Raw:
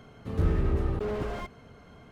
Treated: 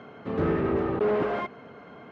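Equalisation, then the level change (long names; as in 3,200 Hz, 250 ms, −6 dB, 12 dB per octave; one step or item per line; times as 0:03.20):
band-pass filter 230–2,400 Hz
+8.5 dB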